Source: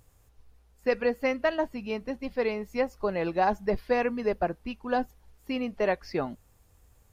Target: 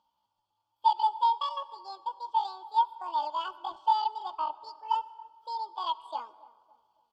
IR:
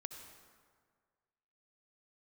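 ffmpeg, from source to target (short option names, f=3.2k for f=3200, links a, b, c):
-filter_complex "[0:a]asplit=3[a][b][c];[a]bandpass=f=530:t=q:w=8,volume=0dB[d];[b]bandpass=f=1.84k:t=q:w=8,volume=-6dB[e];[c]bandpass=f=2.48k:t=q:w=8,volume=-9dB[f];[d][e][f]amix=inputs=3:normalize=0,bandreject=f=5.1k:w=6.3,aecho=1:1:6:0.49,asetrate=78577,aresample=44100,atempo=0.561231,asplit=2[g][h];[h]adelay=280,lowpass=f=860:p=1,volume=-18dB,asplit=2[i][j];[j]adelay=280,lowpass=f=860:p=1,volume=0.51,asplit=2[k][l];[l]adelay=280,lowpass=f=860:p=1,volume=0.51,asplit=2[m][n];[n]adelay=280,lowpass=f=860:p=1,volume=0.51[o];[g][i][k][m][o]amix=inputs=5:normalize=0,asplit=2[p][q];[1:a]atrim=start_sample=2205[r];[q][r]afir=irnorm=-1:irlink=0,volume=-7.5dB[s];[p][s]amix=inputs=2:normalize=0"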